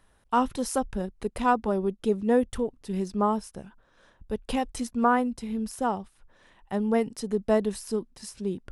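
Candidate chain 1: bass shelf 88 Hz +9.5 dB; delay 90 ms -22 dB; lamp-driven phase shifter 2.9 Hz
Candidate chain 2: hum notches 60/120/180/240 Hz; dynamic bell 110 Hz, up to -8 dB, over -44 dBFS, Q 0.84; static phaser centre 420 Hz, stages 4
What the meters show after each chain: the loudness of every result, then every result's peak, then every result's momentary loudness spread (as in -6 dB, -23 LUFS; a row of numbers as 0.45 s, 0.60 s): -30.0 LUFS, -33.0 LUFS; -11.5 dBFS, -15.0 dBFS; 9 LU, 11 LU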